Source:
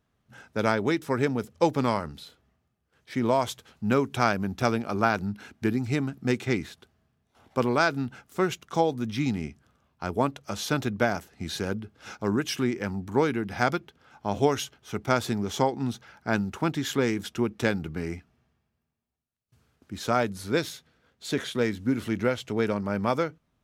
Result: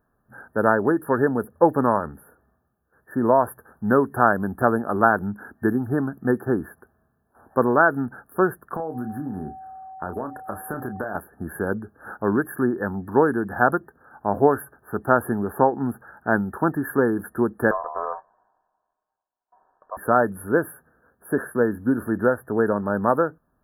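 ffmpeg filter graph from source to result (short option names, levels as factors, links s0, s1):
-filter_complex "[0:a]asettb=1/sr,asplit=3[s0][s1][s2];[s0]atrim=end=8.764[s3];[s1]atrim=start=8.76:end=11.15,asetpts=PTS-STARTPTS,afade=t=in:d=0.004:c=qsin,afade=t=out:st=2.386:d=0.004:c=qsin,aeval=exprs='val(0)+0.00708*sin(2*PI*760*n/s)':c=same,acompressor=threshold=0.0355:ratio=16:attack=3.2:release=140:knee=1:detection=peak,asplit=2[s4][s5];[s5]adelay=32,volume=0.376[s6];[s4][s6]amix=inputs=2:normalize=0,atrim=end_sample=105399[s7];[s2]atrim=start=11.146[s8];[s3][s7]acrossfade=d=0.004:c1=hsin:c2=qsin[s9];[s9][s8]acrossfade=d=0.004:c1=qsin:c2=hsin,asettb=1/sr,asplit=3[s10][s11][s12];[s10]atrim=end=17.714[s13];[s11]atrim=start=17.71:end=19.97,asetpts=PTS-STARTPTS,afade=t=in:d=0.004:c=qsin,afade=t=out:st=2.256:d=0.004:c=qsin,lowpass=3200,aeval=exprs='val(0)*sin(2*PI*850*n/s)':c=same[s14];[s12]atrim=start=19.966[s15];[s13][s14]acrossfade=d=0.004:c1=hsin:c2=qsin[s16];[s16][s15]acrossfade=d=0.004:c1=qsin:c2=hsin,afftfilt=real='re*(1-between(b*sr/4096,1800,10000))':imag='im*(1-between(b*sr/4096,1800,10000))':win_size=4096:overlap=0.75,equalizer=f=110:w=0.69:g=-7,volume=2.24"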